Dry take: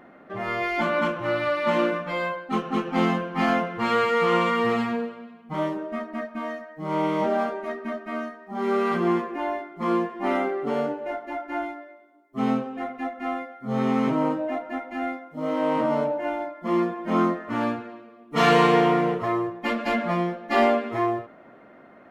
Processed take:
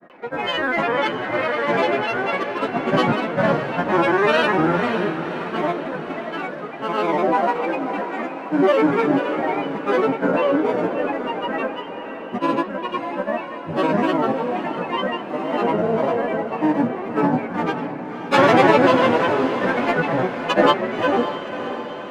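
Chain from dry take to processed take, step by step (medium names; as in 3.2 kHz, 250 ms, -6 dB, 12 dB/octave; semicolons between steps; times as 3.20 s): graphic EQ with 31 bands 400 Hz +8 dB, 800 Hz +8 dB, 2 kHz +7 dB; granulator, pitch spread up and down by 7 st; peaking EQ 73 Hz -15 dB 0.53 oct; echo that smears into a reverb 559 ms, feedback 55%, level -9 dB; trim +2.5 dB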